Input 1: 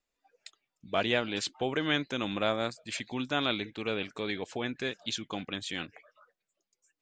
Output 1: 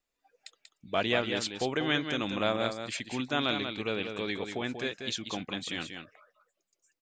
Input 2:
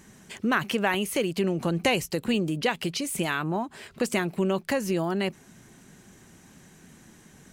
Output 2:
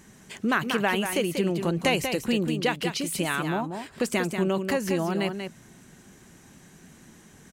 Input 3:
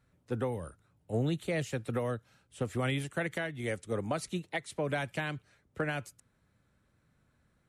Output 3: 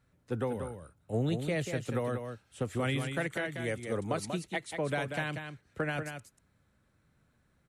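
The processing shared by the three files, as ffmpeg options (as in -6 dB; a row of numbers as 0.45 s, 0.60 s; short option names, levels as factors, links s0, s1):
-af "aecho=1:1:188:0.447"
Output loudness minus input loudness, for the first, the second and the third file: +0.5 LU, +0.5 LU, +0.5 LU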